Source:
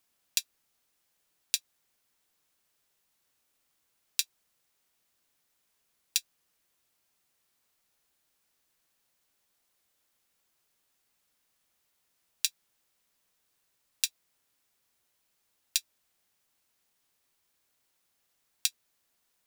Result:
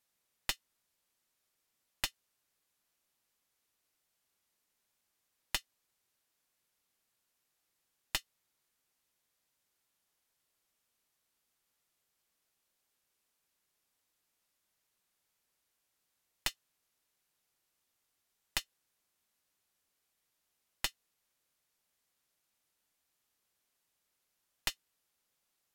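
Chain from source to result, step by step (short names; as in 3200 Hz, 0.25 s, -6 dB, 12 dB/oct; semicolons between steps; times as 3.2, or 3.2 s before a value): tracing distortion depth 0.16 ms; wide varispeed 0.756×; gain -6 dB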